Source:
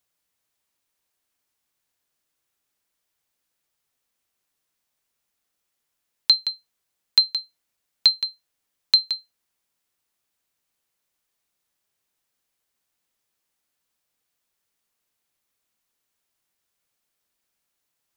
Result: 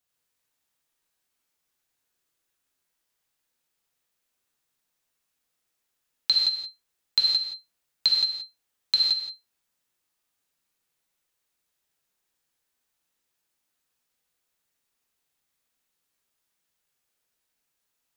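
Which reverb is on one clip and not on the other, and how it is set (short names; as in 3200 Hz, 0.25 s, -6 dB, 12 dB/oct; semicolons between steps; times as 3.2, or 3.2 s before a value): non-linear reverb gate 0.2 s flat, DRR -3.5 dB; gain -5.5 dB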